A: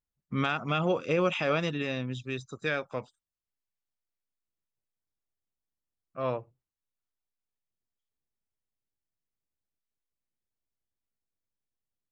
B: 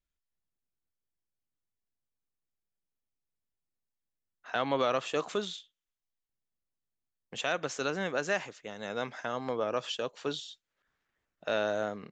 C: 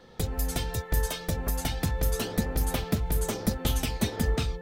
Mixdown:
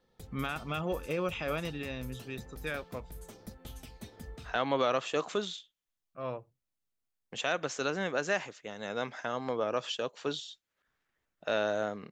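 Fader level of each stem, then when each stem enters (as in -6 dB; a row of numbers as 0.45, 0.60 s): -6.5, 0.0, -19.5 dB; 0.00, 0.00, 0.00 s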